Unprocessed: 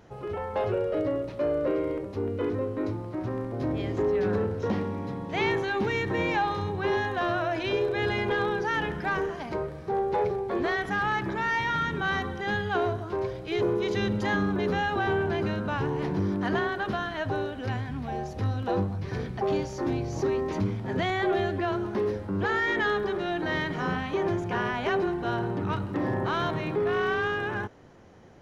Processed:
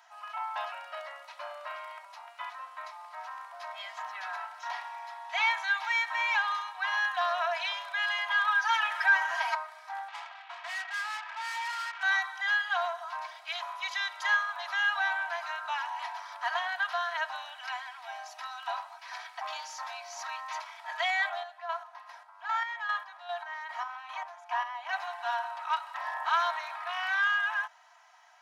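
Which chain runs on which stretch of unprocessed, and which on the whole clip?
8.47–9.55 rippled Chebyshev high-pass 340 Hz, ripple 3 dB + comb 6.3 ms, depth 87% + fast leveller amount 50%
10.08–12.03 CVSD 16 kbps + low shelf 470 Hz -7 dB + tube stage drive 35 dB, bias 0.4
21.29–24.93 rippled Chebyshev high-pass 200 Hz, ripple 6 dB + chopper 2.5 Hz, depth 60%, duty 35%
whole clip: steep high-pass 730 Hz 72 dB/oct; comb 3.1 ms, depth 86%

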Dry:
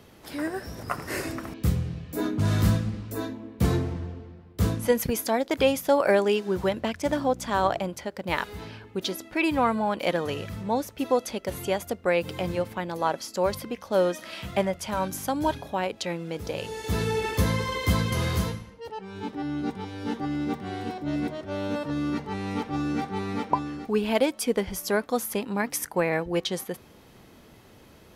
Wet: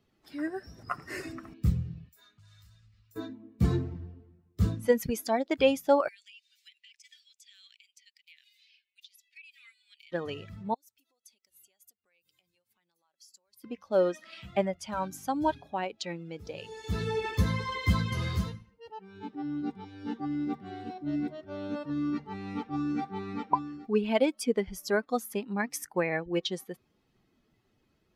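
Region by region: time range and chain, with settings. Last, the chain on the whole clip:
2.09–3.16 passive tone stack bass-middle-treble 10-0-10 + compressor 4:1, threshold -43 dBFS
6.08–10.12 steep high-pass 2200 Hz + compressor 16:1, threshold -40 dBFS
10.74–13.64 compressor 5:1, threshold -38 dBFS + pre-emphasis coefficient 0.9
whole clip: per-bin expansion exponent 1.5; high shelf 9200 Hz -11 dB

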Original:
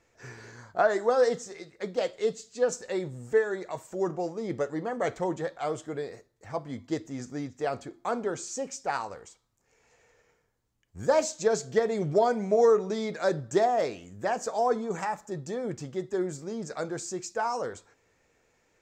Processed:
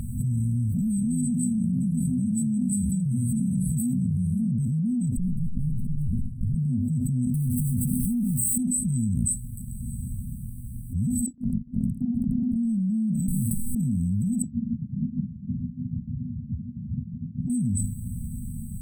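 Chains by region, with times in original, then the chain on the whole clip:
0.69–4.49 tone controls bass -3 dB, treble +6 dB + echoes that change speed 0.202 s, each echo -5 st, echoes 3, each echo -6 dB
5.17–6.55 LPF 4200 Hz + running maximum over 65 samples
7.34–8.58 zero-crossing step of -33 dBFS + notches 60/120 Hz + mismatched tape noise reduction encoder only
11.26–12.56 sine-wave speech + LPF 1800 Hz 6 dB/oct + transient shaper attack +8 dB, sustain +12 dB
13.28–13.75 sample sorter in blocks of 128 samples + overdrive pedal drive 17 dB, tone 7900 Hz, clips at -11.5 dBFS
14.42–17.5 regenerating reverse delay 0.231 s, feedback 48%, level -1 dB + inverted band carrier 3300 Hz + HPF 170 Hz
whole clip: FFT band-reject 250–7900 Hz; high shelf 7900 Hz -7.5 dB; fast leveller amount 100%; gain +4 dB

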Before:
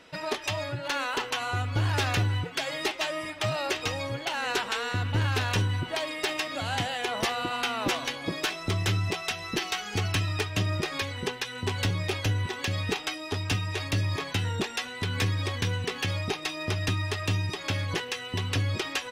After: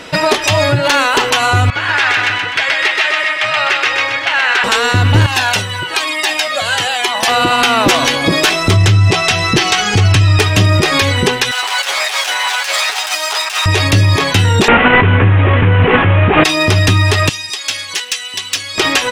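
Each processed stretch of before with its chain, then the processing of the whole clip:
1.7–4.64 band-pass 1900 Hz, Q 1.6 + feedback echo 0.126 s, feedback 48%, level -3.5 dB
5.26–7.28 HPF 710 Hz 6 dB/oct + cascading flanger falling 1.1 Hz
8.76–10.39 LPF 9500 Hz + bell 120 Hz +9 dB 0.62 oct
11.51–13.66 minimum comb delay 9.4 ms + HPF 710 Hz 24 dB/oct + negative-ratio compressor -39 dBFS
14.68–16.44 delta modulation 16 kbps, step -30 dBFS + air absorption 340 m + fast leveller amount 100%
17.29–18.78 LPF 8500 Hz + differentiator + overloaded stage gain 31 dB
whole clip: bell 8200 Hz +2.5 dB; maximiser +24 dB; gain -2 dB

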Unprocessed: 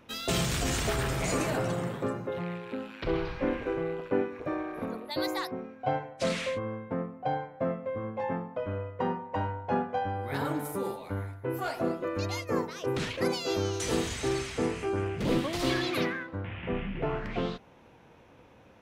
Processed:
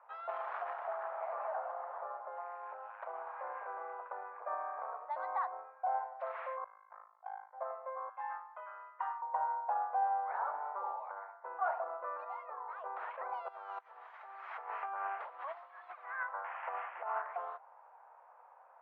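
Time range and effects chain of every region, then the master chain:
0.73–3.34 bell 660 Hz +6.5 dB 0.52 oct + compressor 2.5:1, threshold -36 dBFS
6.64–7.53 Bessel high-pass 1900 Hz + AM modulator 53 Hz, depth 100%
8.09–9.22 HPF 1500 Hz + high shelf 2500 Hz +11 dB + comb 5 ms, depth 33%
12.24–12.73 doubler 16 ms -2 dB + compressor 8:1, threshold -35 dBFS
13.48–17.22 tilt +3.5 dB/oct + negative-ratio compressor -36 dBFS, ratio -0.5
whole clip: LPF 1200 Hz 24 dB/oct; limiter -26 dBFS; steep high-pass 720 Hz 36 dB/oct; gain +5 dB

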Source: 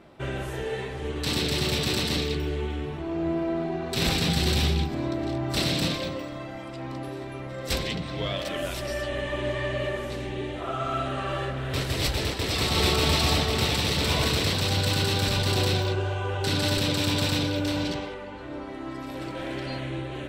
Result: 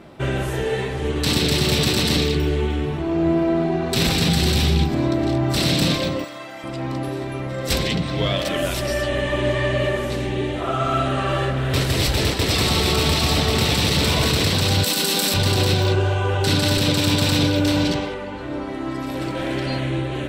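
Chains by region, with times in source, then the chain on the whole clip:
6.24–6.64 HPF 1000 Hz 6 dB/oct + high shelf 11000 Hz +6 dB
14.84–15.34 steep high-pass 170 Hz 48 dB/oct + bell 13000 Hz +12.5 dB 1.6 oct
whole clip: bell 12000 Hz +2.5 dB 1.8 oct; limiter -17.5 dBFS; bell 170 Hz +3 dB 1.9 oct; gain +7 dB

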